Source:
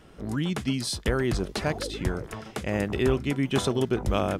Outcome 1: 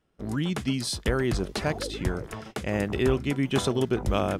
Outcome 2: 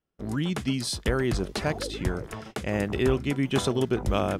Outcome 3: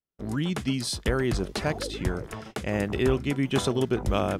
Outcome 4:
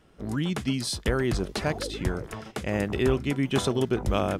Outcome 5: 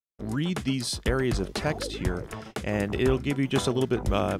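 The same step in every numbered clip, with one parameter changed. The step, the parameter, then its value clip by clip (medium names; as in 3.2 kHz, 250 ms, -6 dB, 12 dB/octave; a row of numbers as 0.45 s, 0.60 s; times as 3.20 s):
gate, range: -21 dB, -33 dB, -45 dB, -7 dB, -59 dB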